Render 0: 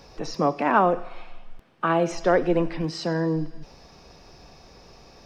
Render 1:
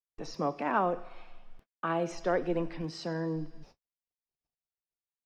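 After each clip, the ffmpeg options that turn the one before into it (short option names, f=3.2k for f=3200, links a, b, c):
-af "agate=range=-56dB:threshold=-42dB:ratio=16:detection=peak,volume=-9dB"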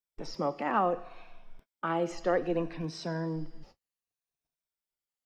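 -af "afftfilt=real='re*pow(10,7/40*sin(2*PI*(1.6*log(max(b,1)*sr/1024/100)/log(2)-(-0.65)*(pts-256)/sr)))':imag='im*pow(10,7/40*sin(2*PI*(1.6*log(max(b,1)*sr/1024/100)/log(2)-(-0.65)*(pts-256)/sr)))':win_size=1024:overlap=0.75"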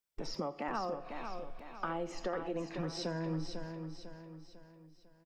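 -af "acompressor=threshold=-38dB:ratio=6,aecho=1:1:499|998|1497|1996|2495:0.447|0.192|0.0826|0.0355|0.0153,volume=3dB"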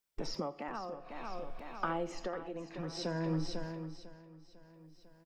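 -af "tremolo=f=0.58:d=0.61,volume=3dB"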